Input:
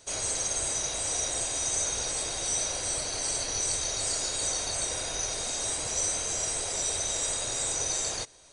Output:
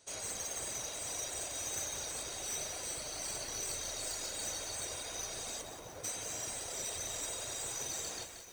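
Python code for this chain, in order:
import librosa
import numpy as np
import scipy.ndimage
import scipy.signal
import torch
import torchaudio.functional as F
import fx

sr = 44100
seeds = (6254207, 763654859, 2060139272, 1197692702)

y = fx.tracing_dist(x, sr, depth_ms=0.025)
y = fx.lowpass(y, sr, hz=1200.0, slope=12, at=(5.61, 6.03), fade=0.02)
y = y + 10.0 ** (-14.5 / 20.0) * np.pad(y, (int(667 * sr / 1000.0), 0))[:len(y)]
y = fx.rev_spring(y, sr, rt60_s=1.5, pass_ms=(36, 44, 49), chirp_ms=25, drr_db=3.5)
y = fx.dereverb_blind(y, sr, rt60_s=0.57)
y = fx.highpass(y, sr, hz=81.0, slope=6)
y = fx.echo_crushed(y, sr, ms=179, feedback_pct=55, bits=7, wet_db=-7.0)
y = y * 10.0 ** (-9.0 / 20.0)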